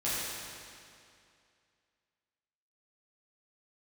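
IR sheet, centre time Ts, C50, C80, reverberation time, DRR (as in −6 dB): 161 ms, −3.5 dB, −1.5 dB, 2.4 s, −11.0 dB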